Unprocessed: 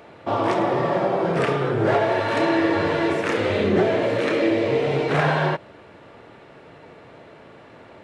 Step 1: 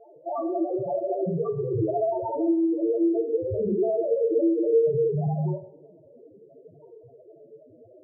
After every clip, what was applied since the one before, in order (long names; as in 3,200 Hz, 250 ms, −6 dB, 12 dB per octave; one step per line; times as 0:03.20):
brickwall limiter −15 dBFS, peak gain reduction 5.5 dB
spectral peaks only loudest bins 2
coupled-rooms reverb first 0.51 s, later 1.5 s, from −18 dB, DRR 6.5 dB
level +4 dB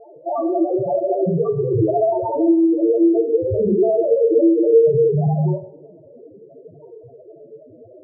low-pass filter 1,100 Hz
level +8 dB